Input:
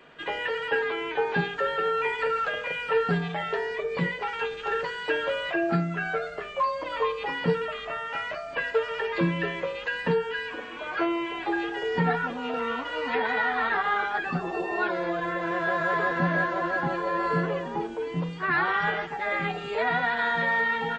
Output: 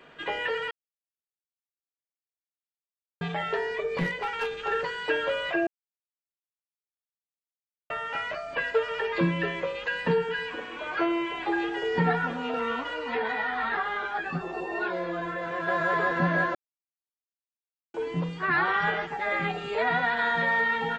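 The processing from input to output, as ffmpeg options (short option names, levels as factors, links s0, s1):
-filter_complex "[0:a]asettb=1/sr,asplit=3[s0][s1][s2];[s0]atrim=end=3.974[s3];[s1]atrim=start=3.97:end=4.5,asetpts=PTS-STARTPTS,afade=t=in:d=0.004:c=qsin,afade=t=out:st=0.526:d=0.004:c=qsin,aeval=exprs='clip(val(0),-1,0.0531)':c=same[s4];[s2]atrim=start=4.496[s5];[s3][s4]acrossfade=d=0.004:c1=hsin:c2=qsin[s6];[s6][s5]acrossfade=d=0.004:c1=qsin:c2=hsin,asplit=3[s7][s8][s9];[s7]afade=t=out:st=9.89:d=0.02[s10];[s8]aecho=1:1:106|212|318|424|530:0.15|0.0853|0.0486|0.0277|0.0158,afade=t=in:st=9.89:d=0.02,afade=t=out:st=12.42:d=0.02[s11];[s9]afade=t=in:st=12.42:d=0.02[s12];[s10][s11][s12]amix=inputs=3:normalize=0,asplit=3[s13][s14][s15];[s13]afade=t=out:st=12.93:d=0.02[s16];[s14]flanger=delay=16.5:depth=2.6:speed=1,afade=t=in:st=12.93:d=0.02,afade=t=out:st=15.67:d=0.02[s17];[s15]afade=t=in:st=15.67:d=0.02[s18];[s16][s17][s18]amix=inputs=3:normalize=0,asplit=7[s19][s20][s21][s22][s23][s24][s25];[s19]atrim=end=0.71,asetpts=PTS-STARTPTS,afade=t=out:st=0.706:d=0.004:c=hsin[s26];[s20]atrim=start=0.71:end=3.21,asetpts=PTS-STARTPTS,volume=0[s27];[s21]atrim=start=3.21:end=5.67,asetpts=PTS-STARTPTS,afade=t=in:d=0.004:c=hsin,afade=t=out:st=2.456:d=0.004:c=hsin[s28];[s22]atrim=start=5.67:end=7.9,asetpts=PTS-STARTPTS,volume=0[s29];[s23]atrim=start=7.9:end=16.55,asetpts=PTS-STARTPTS,afade=t=in:d=0.004:c=hsin,afade=t=out:st=8.646:d=0.004:c=hsin[s30];[s24]atrim=start=16.55:end=17.94,asetpts=PTS-STARTPTS,volume=0[s31];[s25]atrim=start=17.94,asetpts=PTS-STARTPTS,afade=t=in:d=0.004:c=hsin[s32];[s26][s27][s28][s29][s30][s31][s32]concat=n=7:v=0:a=1"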